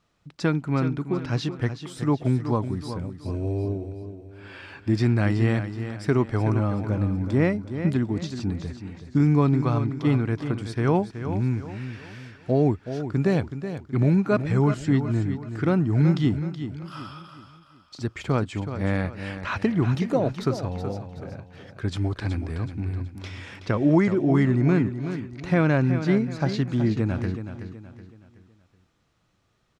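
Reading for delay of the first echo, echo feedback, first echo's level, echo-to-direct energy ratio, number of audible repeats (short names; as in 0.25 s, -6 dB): 0.374 s, 39%, -10.0 dB, -9.5 dB, 4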